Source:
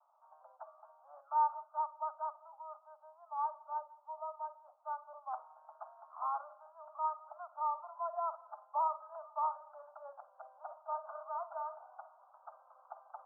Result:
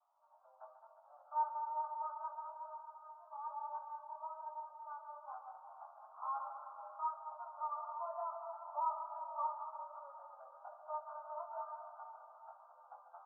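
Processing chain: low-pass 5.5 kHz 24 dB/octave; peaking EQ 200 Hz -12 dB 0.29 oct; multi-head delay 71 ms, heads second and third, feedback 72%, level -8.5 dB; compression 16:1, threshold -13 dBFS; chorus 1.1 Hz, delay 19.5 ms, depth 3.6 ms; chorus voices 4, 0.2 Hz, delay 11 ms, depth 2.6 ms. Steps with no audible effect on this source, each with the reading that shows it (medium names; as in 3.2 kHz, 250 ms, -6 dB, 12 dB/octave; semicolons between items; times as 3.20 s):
low-pass 5.5 kHz: input has nothing above 1.4 kHz; peaking EQ 200 Hz: input has nothing below 540 Hz; compression, threshold -13 dBFS: peak at its input -22.0 dBFS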